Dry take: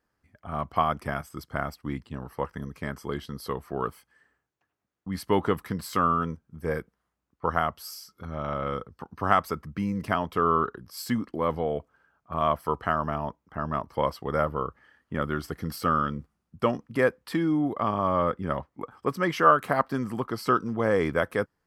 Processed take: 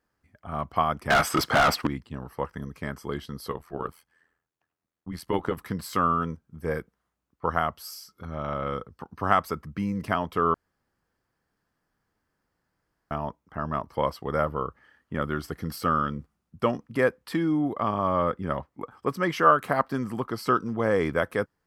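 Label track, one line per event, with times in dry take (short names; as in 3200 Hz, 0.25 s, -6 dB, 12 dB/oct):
1.100000	1.870000	overdrive pedal drive 34 dB, tone 3300 Hz, clips at -11 dBFS
3.520000	5.570000	AM modulator 83 Hz, depth 60%
10.540000	13.110000	room tone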